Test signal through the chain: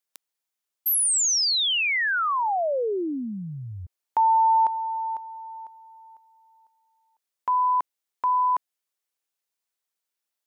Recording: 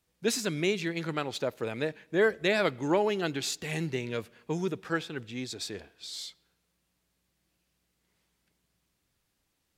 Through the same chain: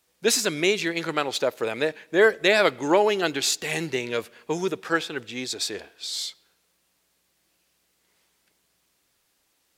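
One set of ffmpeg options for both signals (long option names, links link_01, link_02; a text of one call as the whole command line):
ffmpeg -i in.wav -af "bass=frequency=250:gain=-12,treble=frequency=4000:gain=2,volume=8dB" out.wav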